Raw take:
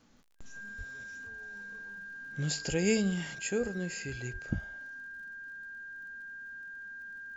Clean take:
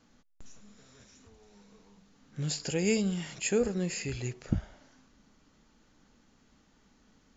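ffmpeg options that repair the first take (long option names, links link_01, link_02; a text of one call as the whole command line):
ffmpeg -i in.wav -filter_complex "[0:a]adeclick=threshold=4,bandreject=frequency=1600:width=30,asplit=3[link_01][link_02][link_03];[link_01]afade=type=out:start_time=0.77:duration=0.02[link_04];[link_02]highpass=frequency=140:width=0.5412,highpass=frequency=140:width=1.3066,afade=type=in:start_time=0.77:duration=0.02,afade=type=out:start_time=0.89:duration=0.02[link_05];[link_03]afade=type=in:start_time=0.89:duration=0.02[link_06];[link_04][link_05][link_06]amix=inputs=3:normalize=0,asplit=3[link_07][link_08][link_09];[link_07]afade=type=out:start_time=2.68:duration=0.02[link_10];[link_08]highpass=frequency=140:width=0.5412,highpass=frequency=140:width=1.3066,afade=type=in:start_time=2.68:duration=0.02,afade=type=out:start_time=2.8:duration=0.02[link_11];[link_09]afade=type=in:start_time=2.8:duration=0.02[link_12];[link_10][link_11][link_12]amix=inputs=3:normalize=0,asplit=3[link_13][link_14][link_15];[link_13]afade=type=out:start_time=4.32:duration=0.02[link_16];[link_14]highpass=frequency=140:width=0.5412,highpass=frequency=140:width=1.3066,afade=type=in:start_time=4.32:duration=0.02,afade=type=out:start_time=4.44:duration=0.02[link_17];[link_15]afade=type=in:start_time=4.44:duration=0.02[link_18];[link_16][link_17][link_18]amix=inputs=3:normalize=0,asetnsamples=nb_out_samples=441:pad=0,asendcmd='3.35 volume volume 4.5dB',volume=0dB" out.wav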